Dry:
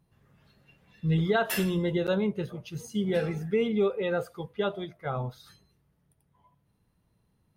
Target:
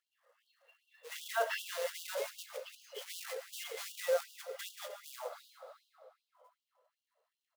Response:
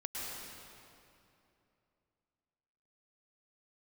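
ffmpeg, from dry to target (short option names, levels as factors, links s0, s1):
-filter_complex "[0:a]highpass=f=280:w=0.5412,highpass=f=280:w=1.3066,equalizer=f=330:t=q:w=4:g=10,equalizer=f=540:t=q:w=4:g=5,equalizer=f=840:t=q:w=4:g=-7,equalizer=f=1500:t=q:w=4:g=-5,equalizer=f=2400:t=q:w=4:g=-10,equalizer=f=3700:t=q:w=4:g=-8,lowpass=f=4000:w=0.5412,lowpass=f=4000:w=1.3066,alimiter=limit=0.0891:level=0:latency=1:release=20,acrusher=bits=4:mode=log:mix=0:aa=0.000001,aecho=1:1:310:0.158,asplit=2[s0][s1];[1:a]atrim=start_sample=2205[s2];[s1][s2]afir=irnorm=-1:irlink=0,volume=0.355[s3];[s0][s3]amix=inputs=2:normalize=0,afftfilt=real='re*gte(b*sr/1024,430*pow(2800/430,0.5+0.5*sin(2*PI*2.6*pts/sr)))':imag='im*gte(b*sr/1024,430*pow(2800/430,0.5+0.5*sin(2*PI*2.6*pts/sr)))':win_size=1024:overlap=0.75,volume=0.891"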